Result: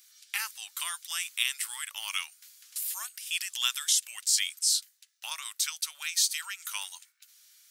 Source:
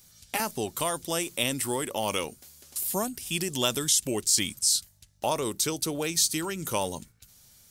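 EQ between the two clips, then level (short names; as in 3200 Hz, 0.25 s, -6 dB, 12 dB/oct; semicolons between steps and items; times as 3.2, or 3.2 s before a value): Bessel high-pass 2300 Hz, order 6; bell 12000 Hz -12 dB 2.9 oct; +9.0 dB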